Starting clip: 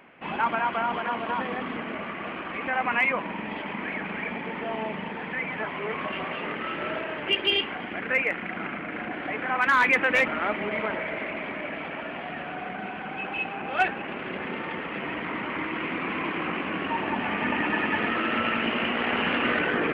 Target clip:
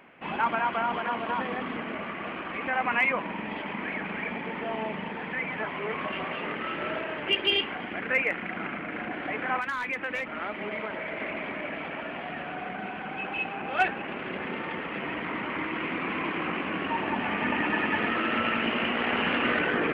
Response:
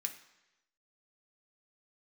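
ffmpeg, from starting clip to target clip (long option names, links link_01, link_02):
-filter_complex "[0:a]asettb=1/sr,asplit=3[link_01][link_02][link_03];[link_01]atrim=end=9.584[link_04];[link_02]atrim=start=9.58:end=11.2,asetpts=PTS-STARTPTS,afade=type=in:duration=0.004:curve=qsin,afade=type=out:start_time=1.616:duration=0.004:curve=qsin,acrossover=split=150|3700[link_05][link_06][link_07];[link_05]acompressor=threshold=-54dB:ratio=4[link_08];[link_06]acompressor=threshold=-30dB:ratio=4[link_09];[link_07]acompressor=threshold=-49dB:ratio=4[link_10];[link_08][link_09][link_10]amix=inputs=3:normalize=0[link_11];[link_03]atrim=start=11.196[link_12];[link_04][link_11]acrossfade=duration=0.004:curve1=hsin:curve2=qsin[link_13];[link_13][link_12]acrossfade=duration=0.004:curve1=qsin:curve2=hsin,volume=-1dB"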